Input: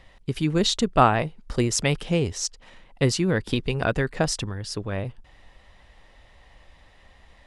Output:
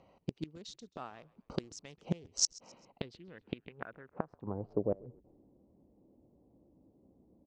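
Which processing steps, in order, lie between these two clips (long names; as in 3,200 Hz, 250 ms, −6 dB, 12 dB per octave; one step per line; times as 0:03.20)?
adaptive Wiener filter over 25 samples
high-pass filter 170 Hz 12 dB per octave
gate with flip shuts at −18 dBFS, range −27 dB
low-pass filter sweep 6,100 Hz → 310 Hz, 0:02.61–0:05.48
on a send: echo with shifted repeats 133 ms, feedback 41%, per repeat −68 Hz, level −23.5 dB
on the sum: level −1.5 dB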